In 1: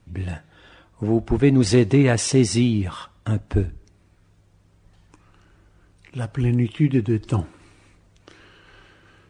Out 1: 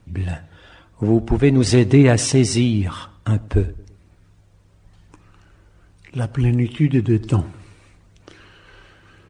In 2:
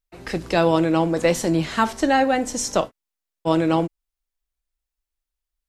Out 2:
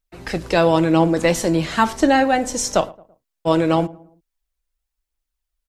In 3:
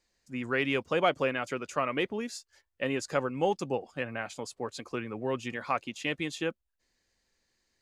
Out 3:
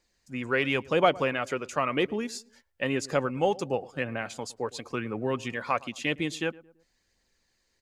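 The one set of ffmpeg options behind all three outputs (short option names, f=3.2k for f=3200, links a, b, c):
-filter_complex "[0:a]aphaser=in_gain=1:out_gain=1:delay=2.2:decay=0.25:speed=0.97:type=triangular,asplit=2[a][b];[b]adelay=111,lowpass=f=1.1k:p=1,volume=-20dB,asplit=2[c][d];[d]adelay=111,lowpass=f=1.1k:p=1,volume=0.44,asplit=2[e][f];[f]adelay=111,lowpass=f=1.1k:p=1,volume=0.44[g];[a][c][e][g]amix=inputs=4:normalize=0,volume=2.5dB"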